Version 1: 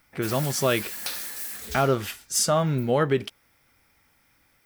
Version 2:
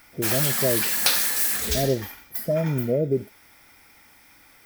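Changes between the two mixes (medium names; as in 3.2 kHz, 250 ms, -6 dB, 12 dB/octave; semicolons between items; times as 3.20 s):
speech: add brick-wall FIR band-stop 700–11000 Hz; background +11.5 dB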